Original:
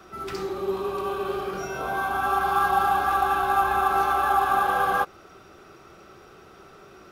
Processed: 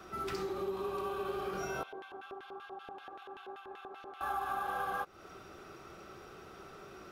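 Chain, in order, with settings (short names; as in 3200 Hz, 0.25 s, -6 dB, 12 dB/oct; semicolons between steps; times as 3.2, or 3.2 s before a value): compressor 5:1, threshold -32 dBFS, peak gain reduction 13.5 dB; 1.83–4.21 LFO band-pass square 5.2 Hz 410–3000 Hz; gain -2.5 dB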